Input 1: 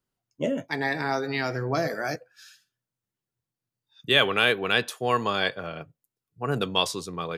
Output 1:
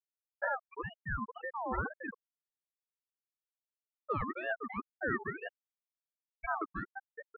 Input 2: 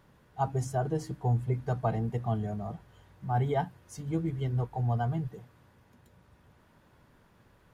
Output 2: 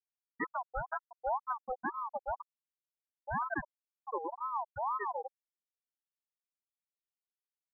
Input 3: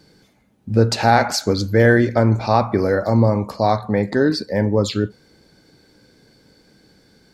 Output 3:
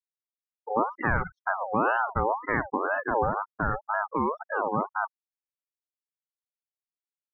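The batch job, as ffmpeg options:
-af "anlmdn=2.51,afftfilt=real='re*gte(hypot(re,im),0.251)':imag='im*gte(hypot(re,im),0.251)':win_size=1024:overlap=0.75,acompressor=threshold=-36dB:ratio=1.5,lowpass=f=1.1k:w=0.5412,lowpass=f=1.1k:w=1.3066,aeval=exprs='val(0)*sin(2*PI*900*n/s+900*0.3/2*sin(2*PI*2*n/s))':c=same,volume=1dB"

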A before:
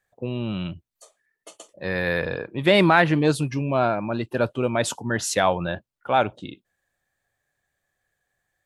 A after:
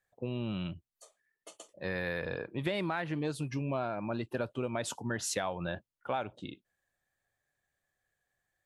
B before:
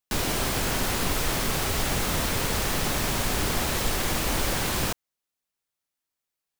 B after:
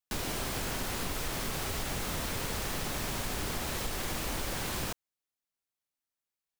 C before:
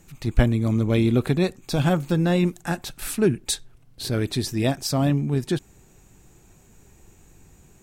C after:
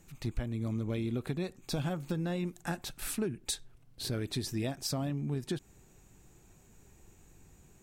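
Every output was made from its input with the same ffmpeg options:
-af "acompressor=threshold=-23dB:ratio=12,volume=-6.5dB"

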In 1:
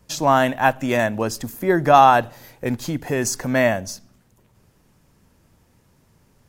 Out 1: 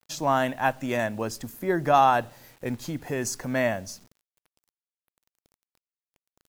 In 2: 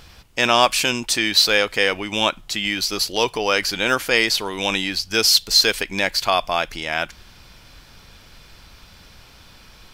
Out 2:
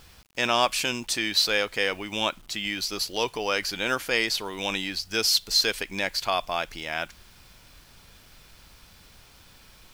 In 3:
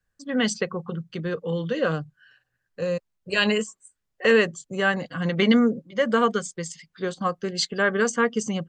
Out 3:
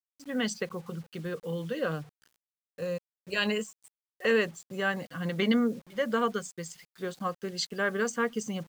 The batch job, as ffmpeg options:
-af "acrusher=bits=7:mix=0:aa=0.000001,volume=-7dB"

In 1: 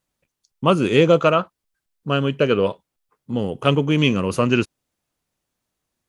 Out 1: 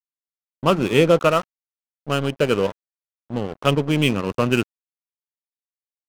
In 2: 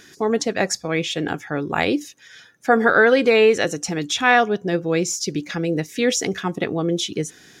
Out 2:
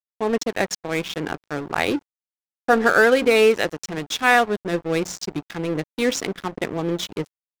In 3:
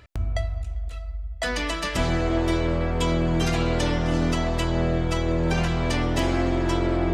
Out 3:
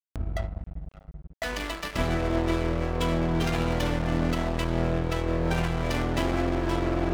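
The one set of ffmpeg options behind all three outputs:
-af "bandreject=f=90.73:t=h:w=4,bandreject=f=181.46:t=h:w=4,bandreject=f=272.19:t=h:w=4,adynamicsmooth=sensitivity=5.5:basefreq=1k,aeval=exprs='sgn(val(0))*max(abs(val(0))-0.0299,0)':c=same"

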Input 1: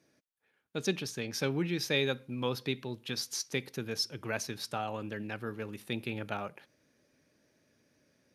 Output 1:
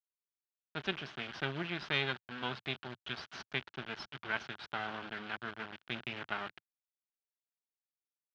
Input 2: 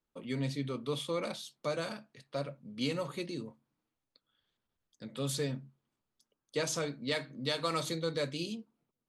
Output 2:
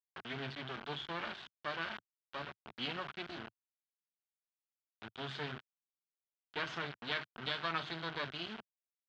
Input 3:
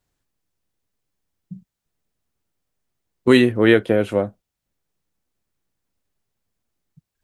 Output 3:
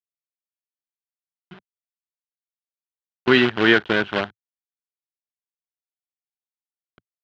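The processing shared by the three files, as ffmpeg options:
-af "acrusher=bits=4:dc=4:mix=0:aa=0.000001,highpass=110,equalizer=f=110:t=q:w=4:g=-5,equalizer=f=180:t=q:w=4:g=-4,equalizer=f=280:t=q:w=4:g=-7,equalizer=f=510:t=q:w=4:g=-10,equalizer=f=1.5k:t=q:w=4:g=8,equalizer=f=3.1k:t=q:w=4:g=5,lowpass=f=3.8k:w=0.5412,lowpass=f=3.8k:w=1.3066"

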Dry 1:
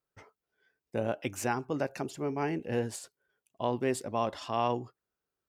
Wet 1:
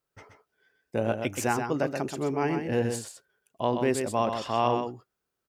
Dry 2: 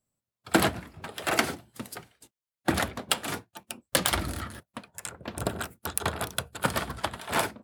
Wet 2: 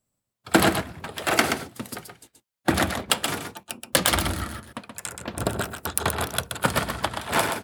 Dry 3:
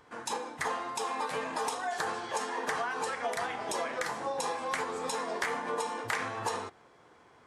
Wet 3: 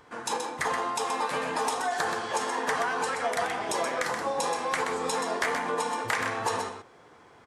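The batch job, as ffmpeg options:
-af "aecho=1:1:127:0.473,volume=4dB"

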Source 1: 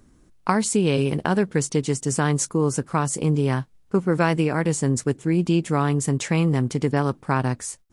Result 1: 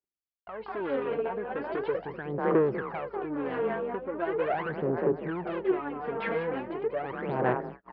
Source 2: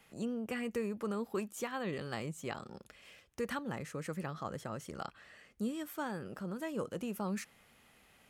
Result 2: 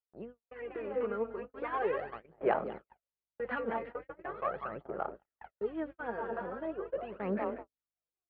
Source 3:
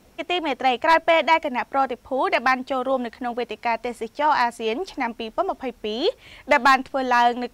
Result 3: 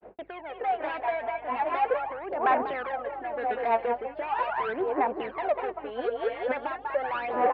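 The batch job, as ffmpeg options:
-filter_complex "[0:a]equalizer=f=670:t=o:w=1.8:g=11,alimiter=limit=-7.5dB:level=0:latency=1:release=275,asplit=2[a][b];[b]asplit=7[c][d][e][f][g][h][i];[c]adelay=193,afreqshift=30,volume=-9dB[j];[d]adelay=386,afreqshift=60,volume=-13.9dB[k];[e]adelay=579,afreqshift=90,volume=-18.8dB[l];[f]adelay=772,afreqshift=120,volume=-23.6dB[m];[g]adelay=965,afreqshift=150,volume=-28.5dB[n];[h]adelay=1158,afreqshift=180,volume=-33.4dB[o];[i]adelay=1351,afreqshift=210,volume=-38.3dB[p];[j][k][l][m][n][o][p]amix=inputs=7:normalize=0[q];[a][q]amix=inputs=2:normalize=0,acompressor=threshold=-17dB:ratio=4,tremolo=f=1.1:d=0.68,aresample=11025,asoftclip=type=tanh:threshold=-25.5dB,aresample=44100,aphaser=in_gain=1:out_gain=1:delay=4.4:decay=0.74:speed=0.4:type=sinusoidal,highpass=220,equalizer=f=250:t=q:w=4:g=-6,equalizer=f=390:t=q:w=4:g=5,equalizer=f=1.6k:t=q:w=4:g=4,lowpass=f=2.6k:w=0.5412,lowpass=f=2.6k:w=1.3066,aeval=exprs='val(0)+0.00158*(sin(2*PI*50*n/s)+sin(2*PI*2*50*n/s)/2+sin(2*PI*3*50*n/s)/3+sin(2*PI*4*50*n/s)/4+sin(2*PI*5*50*n/s)/5)':c=same,agate=range=-51dB:threshold=-39dB:ratio=16:detection=peak,dynaudnorm=f=150:g=11:m=5dB,volume=-8dB"

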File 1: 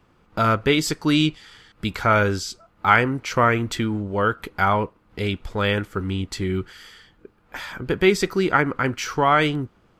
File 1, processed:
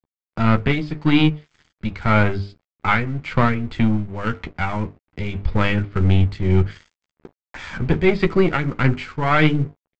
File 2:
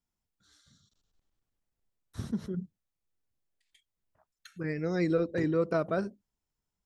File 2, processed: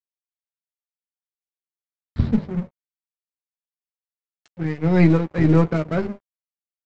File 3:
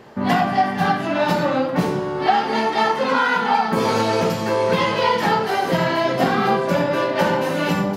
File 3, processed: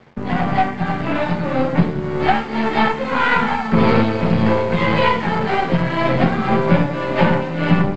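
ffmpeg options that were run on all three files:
-filter_complex "[0:a]tremolo=f=1.8:d=0.54,bass=f=250:g=12,treble=f=4k:g=-3,aeval=exprs='0.794*(cos(1*acos(clip(val(0)/0.794,-1,1)))-cos(1*PI/2))+0.0631*(cos(8*acos(clip(val(0)/0.794,-1,1)))-cos(8*PI/2))':c=same,bandreject=f=50:t=h:w=6,bandreject=f=100:t=h:w=6,bandreject=f=150:t=h:w=6,bandreject=f=200:t=h:w=6,bandreject=f=250:t=h:w=6,bandreject=f=300:t=h:w=6,bandreject=f=350:t=h:w=6,bandreject=f=400:t=h:w=6,bandreject=f=450:t=h:w=6,acrossover=split=120|4300[a][b][c];[c]acompressor=threshold=-52dB:ratio=6[d];[a][b][d]amix=inputs=3:normalize=0,aresample=11025,aresample=44100,aresample=16000,aeval=exprs='sgn(val(0))*max(abs(val(0))-0.00708,0)':c=same,aresample=44100,equalizer=f=2.2k:t=o:w=0.35:g=5,asplit=2[e][f];[f]adelay=13,volume=-9dB[g];[e][g]amix=inputs=2:normalize=0,dynaudnorm=f=960:g=3:m=11.5dB,volume=-1dB"

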